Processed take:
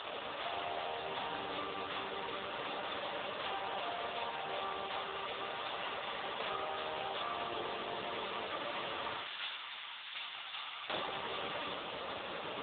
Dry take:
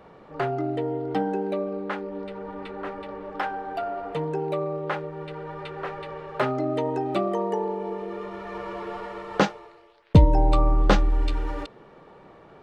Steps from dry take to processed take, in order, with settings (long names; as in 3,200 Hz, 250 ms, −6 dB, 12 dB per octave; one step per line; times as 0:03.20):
compressor on every frequency bin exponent 0.2
high-pass filter 360 Hz 12 dB per octave, from 0:09.16 1,500 Hz, from 0:10.89 240 Hz
first difference
convolution reverb RT60 0.40 s, pre-delay 29 ms, DRR 0 dB
upward compression, threshold −47 dBFS
dynamic equaliser 1,500 Hz, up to −5 dB, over −45 dBFS, Q 0.81
level +1.5 dB
AMR narrowband 5.9 kbit/s 8,000 Hz